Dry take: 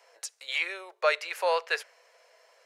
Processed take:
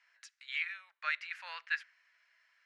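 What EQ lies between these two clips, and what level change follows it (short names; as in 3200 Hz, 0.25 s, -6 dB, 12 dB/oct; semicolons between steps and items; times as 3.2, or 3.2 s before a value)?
ladder high-pass 1400 Hz, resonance 45%; Bessel low-pass 3600 Hz, order 2; 0.0 dB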